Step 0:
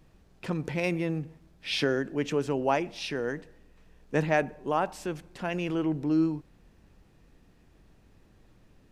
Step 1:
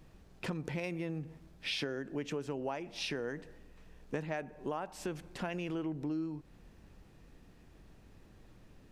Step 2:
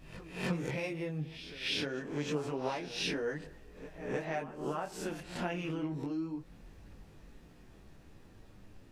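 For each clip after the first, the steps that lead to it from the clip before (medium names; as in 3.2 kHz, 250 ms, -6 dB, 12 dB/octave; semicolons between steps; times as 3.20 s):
compression 8:1, threshold -35 dBFS, peak gain reduction 15.5 dB; trim +1 dB
reverse spectral sustain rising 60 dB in 0.44 s; reverse echo 307 ms -14.5 dB; detune thickener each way 10 cents; trim +4.5 dB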